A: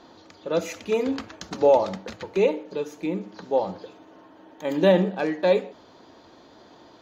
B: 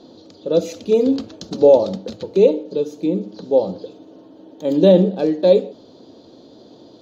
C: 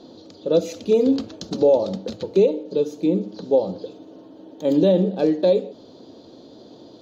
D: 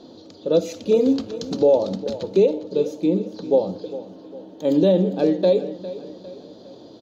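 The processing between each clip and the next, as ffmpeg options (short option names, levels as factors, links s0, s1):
-af "equalizer=f=125:t=o:w=1:g=7,equalizer=f=250:t=o:w=1:g=8,equalizer=f=500:t=o:w=1:g=9,equalizer=f=1000:t=o:w=1:g=-5,equalizer=f=2000:t=o:w=1:g=-11,equalizer=f=4000:t=o:w=1:g=9,volume=0.891"
-af "alimiter=limit=0.398:level=0:latency=1:release=304"
-af "aecho=1:1:404|808|1212|1616:0.178|0.08|0.036|0.0162"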